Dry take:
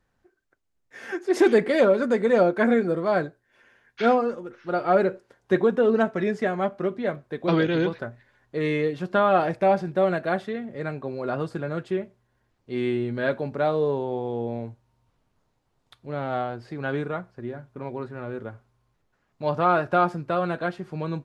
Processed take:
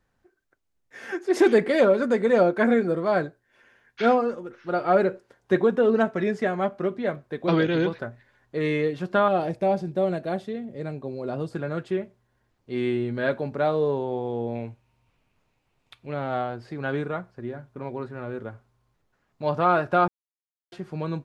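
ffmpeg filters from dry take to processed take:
ffmpeg -i in.wav -filter_complex "[0:a]asettb=1/sr,asplit=3[link_01][link_02][link_03];[link_01]atrim=end=9.284[link_04];[link_02]atrim=start=9.28:end=11.53,asetpts=PTS-STARTPTS,afade=type=in:duration=0.004:curve=qsin,afade=type=out:start_time=2.246:duration=0.004:curve=qsin,equalizer=frequency=1500:width=0.82:gain=-10.5[link_05];[link_03]atrim=start=11.526[link_06];[link_04][link_05]acrossfade=duration=0.004:curve1=hsin:curve2=qsin[link_07];[link_07][link_06]acrossfade=duration=0.004:curve1=qsin:curve2=hsin,asettb=1/sr,asplit=3[link_08][link_09][link_10];[link_08]atrim=end=14.554[link_11];[link_09]atrim=start=14.55:end=16.14,asetpts=PTS-STARTPTS,afade=type=in:duration=0.004:curve=qsin,afade=type=out:start_time=1.586:duration=0.004:curve=qsin,equalizer=frequency=2500:width=2.7:gain=12.5[link_12];[link_10]atrim=start=16.136[link_13];[link_11][link_12]acrossfade=duration=0.004:curve1=hsin:curve2=qsin[link_14];[link_14][link_13]acrossfade=duration=0.004:curve1=qsin:curve2=hsin,asplit=3[link_15][link_16][link_17];[link_15]atrim=end=20.08,asetpts=PTS-STARTPTS,afade=type=out:start_time=20.076:duration=0.004:curve=hsin[link_18];[link_16]atrim=start=20.08:end=20.72,asetpts=PTS-STARTPTS,volume=0[link_19];[link_17]atrim=start=20.72,asetpts=PTS-STARTPTS,afade=type=in:duration=0.004:curve=hsin[link_20];[link_18][link_19][link_20]concat=n=3:v=0:a=1" out.wav

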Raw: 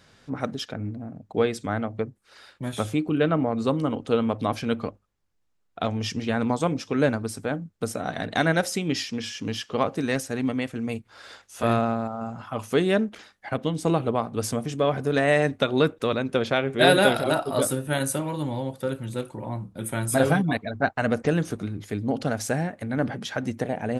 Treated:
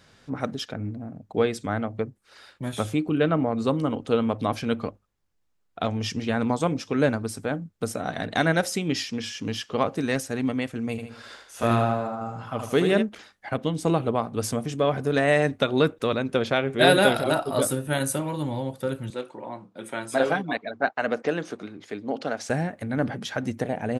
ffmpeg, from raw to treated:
ffmpeg -i in.wav -filter_complex "[0:a]asplit=3[link_01][link_02][link_03];[link_01]afade=type=out:start_time=10.97:duration=0.02[link_04];[link_02]aecho=1:1:77|154|231|308|385:0.473|0.208|0.0916|0.0403|0.0177,afade=type=in:start_time=10.97:duration=0.02,afade=type=out:start_time=13.01:duration=0.02[link_05];[link_03]afade=type=in:start_time=13.01:duration=0.02[link_06];[link_04][link_05][link_06]amix=inputs=3:normalize=0,asettb=1/sr,asplit=3[link_07][link_08][link_09];[link_07]atrim=end=19.104[link_10];[link_08]atrim=start=19.1:end=22.5,asetpts=PTS-STARTPTS,afade=type=in:duration=0.004:curve=qsin,afade=type=out:start_time=3.396:duration=0.004:curve=qsin,highpass=320,lowpass=5500[link_11];[link_09]atrim=start=22.496[link_12];[link_10][link_11]acrossfade=duration=0.004:curve1=hsin:curve2=qsin[link_13];[link_13][link_12]acrossfade=duration=0.004:curve1=qsin:curve2=hsin" out.wav

